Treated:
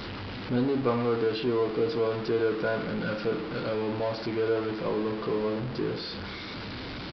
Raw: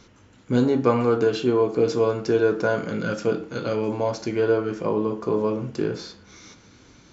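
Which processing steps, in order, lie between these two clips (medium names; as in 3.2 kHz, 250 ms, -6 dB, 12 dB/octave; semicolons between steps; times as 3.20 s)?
jump at every zero crossing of -22.5 dBFS; resampled via 11.025 kHz; trim -8.5 dB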